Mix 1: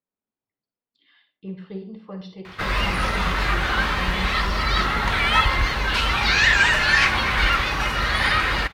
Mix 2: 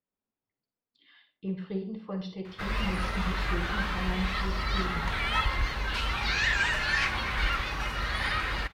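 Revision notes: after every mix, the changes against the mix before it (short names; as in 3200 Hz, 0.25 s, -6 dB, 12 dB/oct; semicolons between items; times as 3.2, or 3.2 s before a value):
background -10.0 dB; master: add low shelf 69 Hz +5.5 dB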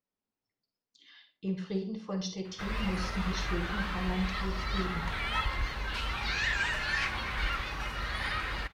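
speech: remove running mean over 7 samples; background -4.0 dB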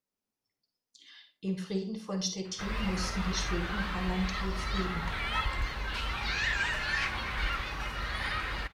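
speech: remove air absorption 140 m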